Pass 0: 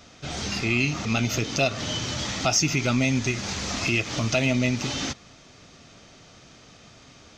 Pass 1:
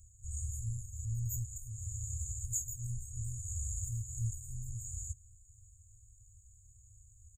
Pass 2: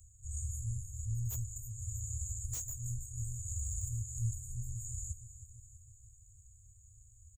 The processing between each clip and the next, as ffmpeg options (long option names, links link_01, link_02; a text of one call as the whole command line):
ffmpeg -i in.wav -af "afftfilt=real='re*(1-between(b*sr/4096,120,6600))':imag='im*(1-between(b*sr/4096,120,6600))':win_size=4096:overlap=0.75,equalizer=frequency=150:width=1.7:gain=-14.5,aecho=1:1:2.2:0.37,volume=1dB" out.wav
ffmpeg -i in.wav -filter_complex "[0:a]aecho=1:1:323|646|969|1292|1615|1938:0.224|0.121|0.0653|0.0353|0.019|0.0103,acrossover=split=120|5300[link_01][link_02][link_03];[link_03]aeval=exprs='0.0141*(abs(mod(val(0)/0.0141+3,4)-2)-1)':channel_layout=same[link_04];[link_01][link_02][link_04]amix=inputs=3:normalize=0" out.wav